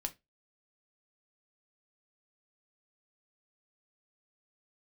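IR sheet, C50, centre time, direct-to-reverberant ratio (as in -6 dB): 20.0 dB, 4 ms, 6.0 dB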